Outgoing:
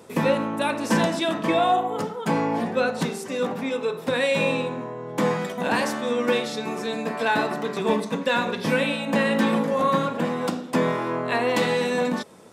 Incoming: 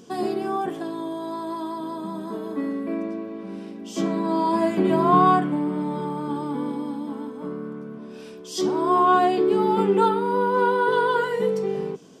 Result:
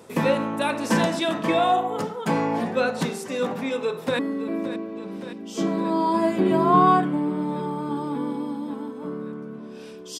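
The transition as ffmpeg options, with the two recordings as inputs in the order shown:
-filter_complex "[0:a]apad=whole_dur=10.19,atrim=end=10.19,atrim=end=4.192[a];[1:a]atrim=start=2.578:end=8.58[b];[a][b]acrossfade=d=0.004:c1=hsin:c2=hsin,asplit=2[c][d];[d]afade=t=in:st=3.81:d=0.01,afade=t=out:st=4.19:d=0.01,aecho=0:1:570|1140|1710|2280|2850|3420|3990|4560|5130|5700|6270|6840:0.237137|0.177853|0.13339|0.100042|0.0750317|0.0562738|0.0422054|0.031654|0.0237405|0.0178054|0.013354|0.0100155[e];[c][e]amix=inputs=2:normalize=0"

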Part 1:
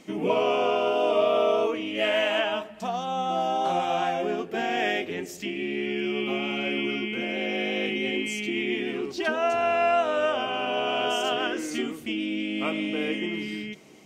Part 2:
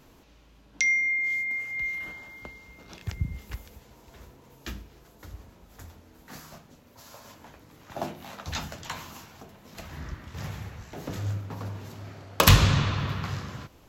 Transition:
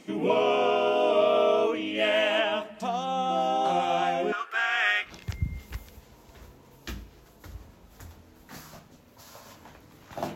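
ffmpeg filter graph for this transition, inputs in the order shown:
-filter_complex "[0:a]asettb=1/sr,asplit=3[a][b][c];[a]atrim=end=4.324[d];[b]atrim=start=4.32:end=5.12,asetpts=PTS-STARTPTS,afade=t=in:d=0.004:c=qsin,afade=t=out:st=0.796:d=0.004:c=qsin,highpass=f=1.3k:t=q:w=6.8[e];[c]atrim=start=5.116[f];[d][e]acrossfade=d=0.004:c1=hsin:c2=qsin[g];[g][f]acrossfade=d=0.004:c1=qsin:c2=hsin,apad=whole_dur=10.35,atrim=end=10.35,atrim=end=5.12,asetpts=PTS-STARTPTS[h];[1:a]atrim=start=2.79:end=8.14,asetpts=PTS-STARTPTS[i];[h][i]acrossfade=d=0.12:c1=tri:c2=tri"

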